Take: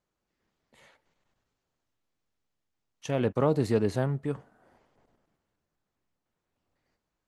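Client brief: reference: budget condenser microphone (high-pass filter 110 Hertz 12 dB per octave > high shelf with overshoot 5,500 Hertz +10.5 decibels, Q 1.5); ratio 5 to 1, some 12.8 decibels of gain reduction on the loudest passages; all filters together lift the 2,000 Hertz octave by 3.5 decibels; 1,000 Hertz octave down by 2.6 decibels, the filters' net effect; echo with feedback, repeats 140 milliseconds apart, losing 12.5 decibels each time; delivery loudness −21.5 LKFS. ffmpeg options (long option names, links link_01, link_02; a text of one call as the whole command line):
ffmpeg -i in.wav -af "equalizer=frequency=1000:width_type=o:gain=-5,equalizer=frequency=2000:width_type=o:gain=7.5,acompressor=threshold=-35dB:ratio=5,highpass=110,highshelf=frequency=5500:width_type=q:width=1.5:gain=10.5,aecho=1:1:140|280|420:0.237|0.0569|0.0137,volume=19dB" out.wav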